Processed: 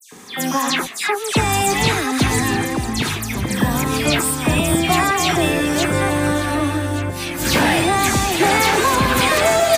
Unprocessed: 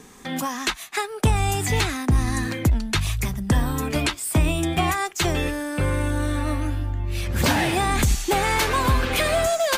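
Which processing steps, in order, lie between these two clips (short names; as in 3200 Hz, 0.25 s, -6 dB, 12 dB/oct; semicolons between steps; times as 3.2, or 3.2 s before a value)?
reverse delay 0.499 s, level -4.5 dB; Bessel high-pass 150 Hz, order 2; in parallel at +2.5 dB: limiter -16 dBFS, peak gain reduction 7.5 dB; 2.51–3.34 on the sum: compressor 1.5:1, threshold -24 dBFS, peak gain reduction 4.5 dB; dispersion lows, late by 0.124 s, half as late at 2800 Hz; on a send: echo 1.177 s -14.5 dB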